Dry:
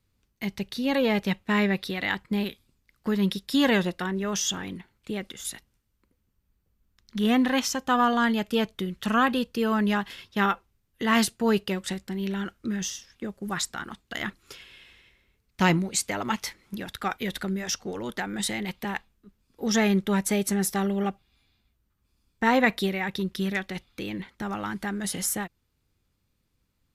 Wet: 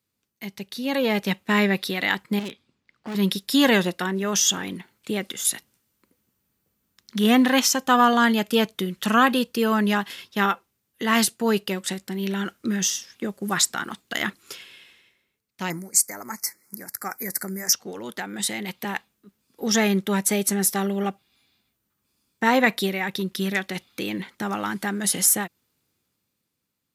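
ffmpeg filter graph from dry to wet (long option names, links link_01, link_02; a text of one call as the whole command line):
ffmpeg -i in.wav -filter_complex "[0:a]asettb=1/sr,asplit=3[link_01][link_02][link_03];[link_01]atrim=end=2.394[link_04];[link_02]atrim=start=2.39:end=3.15,asetpts=PTS-STARTPTS,afade=type=in:duration=0.004:curve=qsin,afade=type=out:start_time=0.756:duration=0.004:curve=qsin,lowpass=3500,volume=32.5dB,asoftclip=hard,volume=-32.5dB[link_05];[link_03]atrim=start=3.146[link_06];[link_04][link_05]acrossfade=duration=0.004:curve1=hsin:curve2=qsin[link_07];[link_07][link_06]acrossfade=duration=0.004:curve1=qsin:curve2=hsin,asettb=1/sr,asplit=3[link_08][link_09][link_10];[link_08]atrim=end=15.704[link_11];[link_09]atrim=start=15.7:end=17.73,asetpts=PTS-STARTPTS,afade=type=in:duration=0.004:curve=qsin,afade=type=out:start_time=2.026:duration=0.004:curve=qsin,asuperstop=centerf=3200:order=8:qfactor=1.3,aemphasis=mode=production:type=75kf[link_12];[link_10]atrim=start=17.726[link_13];[link_11][link_12]acrossfade=duration=0.004:curve1=hsin:curve2=qsin[link_14];[link_14][link_13]acrossfade=duration=0.004:curve1=qsin:curve2=hsin,highpass=160,highshelf=frequency=6300:gain=8,dynaudnorm=framelen=100:gausssize=21:maxgain=11.5dB,volume=-4dB" out.wav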